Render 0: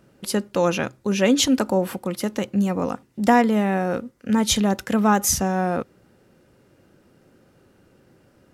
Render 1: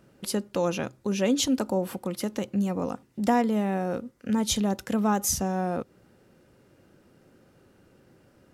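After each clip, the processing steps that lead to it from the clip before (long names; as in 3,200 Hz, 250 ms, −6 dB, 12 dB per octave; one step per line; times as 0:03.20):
dynamic equaliser 1,800 Hz, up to −5 dB, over −37 dBFS, Q 1
in parallel at −2.5 dB: downward compressor, threshold −29 dBFS, peak gain reduction 15.5 dB
on the sum: level −7 dB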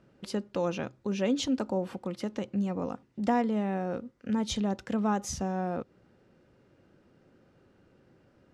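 high-frequency loss of the air 95 metres
level −3.5 dB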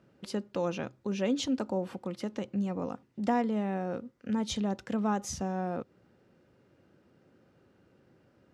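high-pass filter 64 Hz
level −1.5 dB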